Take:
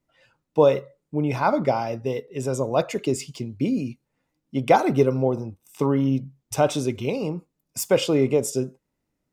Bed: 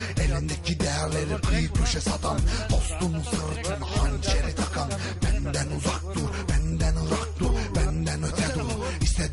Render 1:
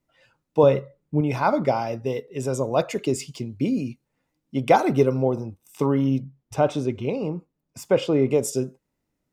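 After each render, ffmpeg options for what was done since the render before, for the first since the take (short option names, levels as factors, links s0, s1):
-filter_complex "[0:a]asettb=1/sr,asplit=3[s0][s1][s2];[s0]atrim=end=0.634[s3];[s1]atrim=start=0.63:end=1.21,asetpts=PTS-STARTPTS,afade=t=in:d=0.004:c=qsin,afade=t=out:st=0.576:d=0.004:c=qsin,bass=f=250:g=7,treble=f=4000:g=-7[s4];[s2]atrim=start=1.206[s5];[s3][s4]acrossfade=d=0.004:c1=hsin:c2=qsin[s6];[s6][s5]acrossfade=d=0.004:c1=qsin:c2=hsin,asettb=1/sr,asplit=3[s7][s8][s9];[s7]atrim=end=6.224[s10];[s8]atrim=start=6.22:end=8.31,asetpts=PTS-STARTPTS,afade=t=in:d=0.004:c=qsin,afade=t=out:st=2.086:d=0.004:c=qsin,lowpass=f=1900:p=1[s11];[s9]atrim=start=8.306[s12];[s10][s11]acrossfade=d=0.004:c1=hsin:c2=qsin[s13];[s13][s12]acrossfade=d=0.004:c1=qsin:c2=hsin"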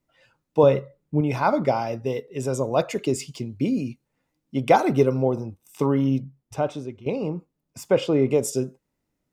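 -filter_complex "[0:a]asplit=2[s0][s1];[s0]atrim=end=7.06,asetpts=PTS-STARTPTS,afade=t=out:st=6.24:d=0.82:silence=0.177828[s2];[s1]atrim=start=7.06,asetpts=PTS-STARTPTS,afade=t=in:d=0.004:c=hsin:silence=0.177828[s3];[s2][s3]concat=n=2:v=0:a=1"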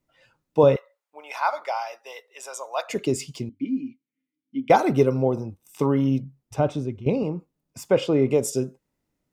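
-filter_complex "[0:a]asettb=1/sr,asplit=3[s0][s1][s2];[s0]atrim=end=0.764[s3];[s1]atrim=start=0.76:end=2.9,asetpts=PTS-STARTPTS,afade=t=in:d=0.004:c=qsin,afade=t=out:st=2.136:d=0.004:c=qsin,highpass=f=750:w=0.5412,highpass=f=750:w=1.3066[s4];[s2]atrim=start=2.896[s5];[s3][s4]acrossfade=d=0.004:c1=hsin:c2=qsin[s6];[s6][s5]acrossfade=d=0.004:c1=qsin:c2=hsin,asettb=1/sr,asplit=3[s7][s8][s9];[s7]atrim=end=3.494[s10];[s8]atrim=start=3.49:end=4.7,asetpts=PTS-STARTPTS,afade=t=in:d=0.004:c=qsin,afade=t=out:st=1.206:d=0.004:c=qsin,asplit=3[s11][s12][s13];[s11]bandpass=f=270:t=q:w=8,volume=1[s14];[s12]bandpass=f=2290:t=q:w=8,volume=0.501[s15];[s13]bandpass=f=3010:t=q:w=8,volume=0.355[s16];[s14][s15][s16]amix=inputs=3:normalize=0[s17];[s9]atrim=start=4.696[s18];[s10][s17]acrossfade=d=0.004:c1=hsin:c2=qsin[s19];[s19][s18]acrossfade=d=0.004:c1=qsin:c2=hsin,asettb=1/sr,asplit=3[s20][s21][s22];[s20]atrim=end=6.594[s23];[s21]atrim=start=6.59:end=7.23,asetpts=PTS-STARTPTS,afade=t=in:d=0.004:c=qsin,afade=t=out:st=0.636:d=0.004:c=qsin,lowshelf=f=240:g=10.5[s24];[s22]atrim=start=7.226[s25];[s23][s24]acrossfade=d=0.004:c1=hsin:c2=qsin[s26];[s26][s25]acrossfade=d=0.004:c1=qsin:c2=hsin"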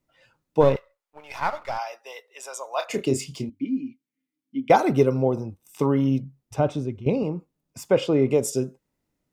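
-filter_complex "[0:a]asplit=3[s0][s1][s2];[s0]afade=t=out:st=0.6:d=0.02[s3];[s1]aeval=exprs='if(lt(val(0),0),0.447*val(0),val(0))':c=same,afade=t=in:st=0.6:d=0.02,afade=t=out:st=1.77:d=0.02[s4];[s2]afade=t=in:st=1.77:d=0.02[s5];[s3][s4][s5]amix=inputs=3:normalize=0,asettb=1/sr,asplit=3[s6][s7][s8];[s6]atrim=end=2.694[s9];[s7]atrim=start=2.69:end=3.5,asetpts=PTS-STARTPTS,afade=t=in:d=0.004:c=qsin,afade=t=out:st=0.806:d=0.004:c=qsin,asplit=2[s10][s11];[s11]adelay=30,volume=0.398[s12];[s10][s12]amix=inputs=2:normalize=0,atrim=end_sample=35721[s13];[s8]atrim=start=3.496[s14];[s9][s13]acrossfade=d=0.004:c1=hsin:c2=qsin[s15];[s15][s14]acrossfade=d=0.004:c1=qsin:c2=hsin"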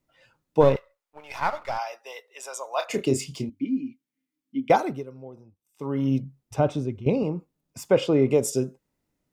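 -filter_complex "[0:a]asplit=3[s0][s1][s2];[s0]atrim=end=5.03,asetpts=PTS-STARTPTS,afade=t=out:st=4.62:d=0.41:silence=0.1[s3];[s1]atrim=start=5.03:end=5.76,asetpts=PTS-STARTPTS,volume=0.1[s4];[s2]atrim=start=5.76,asetpts=PTS-STARTPTS,afade=t=in:d=0.41:silence=0.1[s5];[s3][s4][s5]concat=n=3:v=0:a=1"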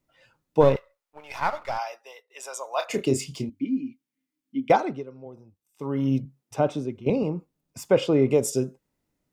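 -filter_complex "[0:a]asplit=3[s0][s1][s2];[s0]afade=t=out:st=4.72:d=0.02[s3];[s1]highpass=140,lowpass=5300,afade=t=in:st=4.72:d=0.02,afade=t=out:st=5.25:d=0.02[s4];[s2]afade=t=in:st=5.25:d=0.02[s5];[s3][s4][s5]amix=inputs=3:normalize=0,asettb=1/sr,asplit=3[s6][s7][s8];[s6]atrim=end=6.254[s9];[s7]atrim=start=6.25:end=7.1,asetpts=PTS-STARTPTS,afade=t=in:d=0.004:c=qsin,afade=t=out:st=0.846:d=0.004:c=qsin,highpass=170[s10];[s8]atrim=start=7.096[s11];[s9][s10]acrossfade=d=0.004:c1=hsin:c2=qsin[s12];[s12][s11]acrossfade=d=0.004:c1=qsin:c2=hsin,asplit=2[s13][s14];[s13]atrim=end=2.3,asetpts=PTS-STARTPTS,afade=t=out:st=1.86:d=0.44:silence=0.177828[s15];[s14]atrim=start=2.3,asetpts=PTS-STARTPTS,afade=t=in:d=0.004:c=hsin:silence=0.177828[s16];[s15][s16]concat=n=2:v=0:a=1"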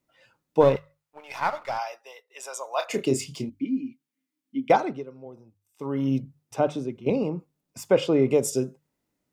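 -af "lowshelf=f=61:g=-11.5,bandreject=f=50:t=h:w=6,bandreject=f=100:t=h:w=6,bandreject=f=150:t=h:w=6"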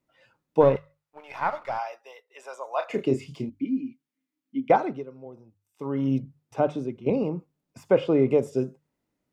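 -filter_complex "[0:a]highshelf=f=3900:g=-7,acrossover=split=2800[s0][s1];[s1]acompressor=threshold=0.00251:ratio=4:attack=1:release=60[s2];[s0][s2]amix=inputs=2:normalize=0"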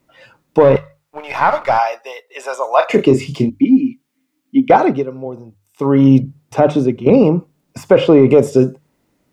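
-af "acontrast=78,alimiter=level_in=2.99:limit=0.891:release=50:level=0:latency=1"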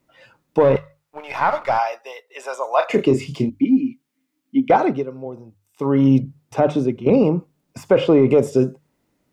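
-af "volume=0.562"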